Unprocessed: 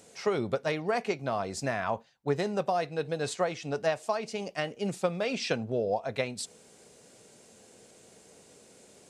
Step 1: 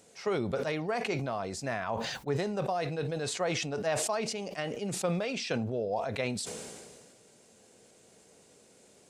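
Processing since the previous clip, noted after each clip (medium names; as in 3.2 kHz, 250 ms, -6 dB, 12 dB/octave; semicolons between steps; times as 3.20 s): decay stretcher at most 31 dB/s; trim -4 dB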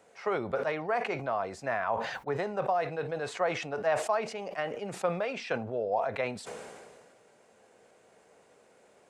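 three-band isolator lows -12 dB, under 510 Hz, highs -16 dB, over 2.2 kHz; trim +5.5 dB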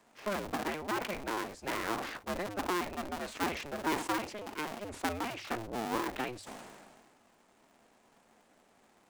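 cycle switcher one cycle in 2, inverted; hum notches 50/100 Hz; trim -4.5 dB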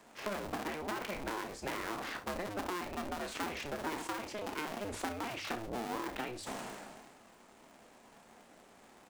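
compression 6:1, threshold -42 dBFS, peak gain reduction 14 dB; on a send: early reflections 30 ms -9 dB, 68 ms -15.5 dB; on the sum: trim +5.5 dB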